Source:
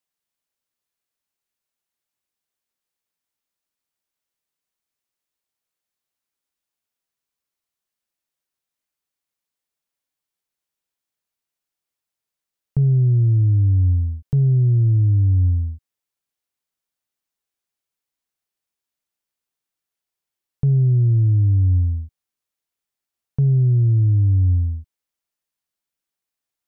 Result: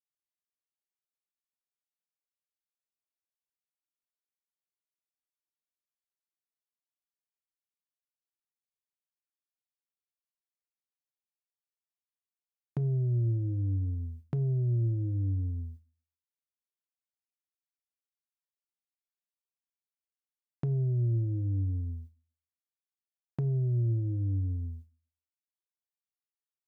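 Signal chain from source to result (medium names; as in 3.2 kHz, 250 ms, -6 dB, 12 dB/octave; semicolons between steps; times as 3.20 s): gate with hold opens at -21 dBFS; high-pass 540 Hz 6 dB/octave; reverberation RT60 0.45 s, pre-delay 3 ms, DRR 14.5 dB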